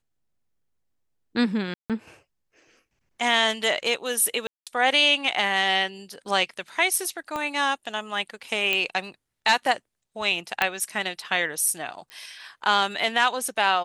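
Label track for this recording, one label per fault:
1.740000	1.900000	dropout 157 ms
4.470000	4.670000	dropout 197 ms
7.360000	7.360000	pop -16 dBFS
8.730000	8.730000	pop -10 dBFS
10.620000	10.620000	pop -7 dBFS
12.100000	12.100000	pop -25 dBFS

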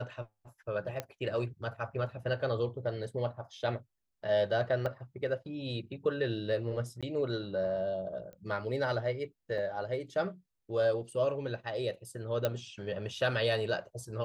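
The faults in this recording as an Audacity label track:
1.000000	1.000000	pop -20 dBFS
4.860000	4.860000	dropout 2 ms
7.010000	7.030000	dropout 16 ms
8.330000	8.330000	pop -36 dBFS
9.580000	9.580000	dropout 4.2 ms
12.450000	12.450000	pop -16 dBFS

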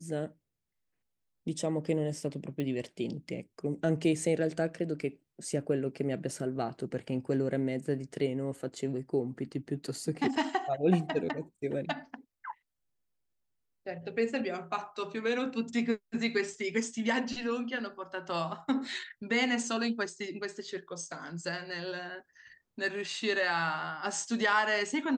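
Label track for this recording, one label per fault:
2.600000	2.600000	pop -23 dBFS

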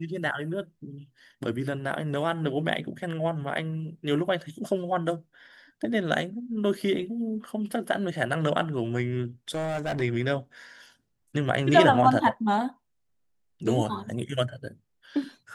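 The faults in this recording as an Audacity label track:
9.490000	10.020000	clipped -25.5 dBFS

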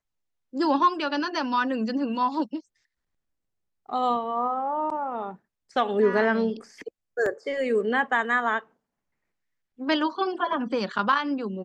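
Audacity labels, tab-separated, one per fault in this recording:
7.260000	7.260000	dropout 2.8 ms

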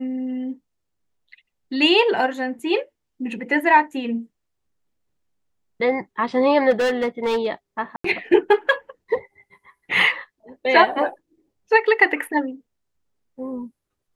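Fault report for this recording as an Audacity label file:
2.590000	2.590000	dropout 3.5 ms
6.700000	7.470000	clipped -17 dBFS
7.960000	8.040000	dropout 84 ms

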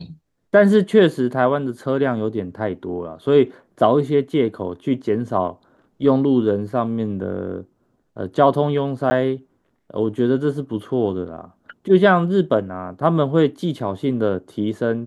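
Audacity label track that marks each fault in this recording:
9.100000	9.110000	dropout 10 ms

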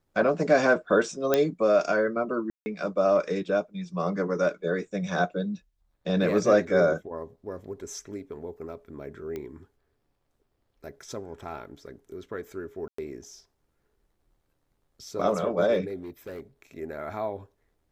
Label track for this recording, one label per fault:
1.340000	1.340000	pop -8 dBFS
2.500000	2.660000	dropout 160 ms
6.670000	6.670000	dropout 2.6 ms
9.360000	9.360000	pop -23 dBFS
12.880000	12.980000	dropout 104 ms
16.010000	16.410000	clipped -34 dBFS

